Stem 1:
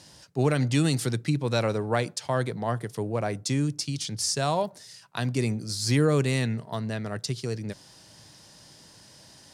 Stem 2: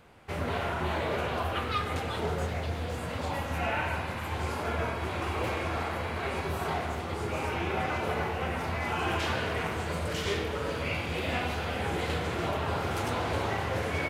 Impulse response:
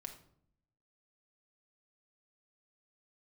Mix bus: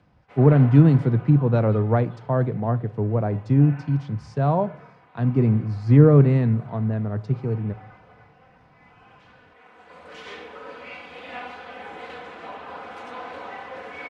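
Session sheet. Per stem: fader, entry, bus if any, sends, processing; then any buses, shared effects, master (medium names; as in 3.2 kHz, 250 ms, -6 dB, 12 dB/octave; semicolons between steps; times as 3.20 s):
0.0 dB, 0.00 s, send -5.5 dB, bass shelf 190 Hz +11 dB
+1.0 dB, 0.00 s, no send, upward compressor, threshold -48 dBFS; tilt EQ +4.5 dB/octave; comb 4 ms, depth 65%; auto duck -13 dB, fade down 1.35 s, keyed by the first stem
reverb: on, RT60 0.65 s, pre-delay 4 ms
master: low-pass 1.2 kHz 12 dB/octave; three bands expanded up and down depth 40%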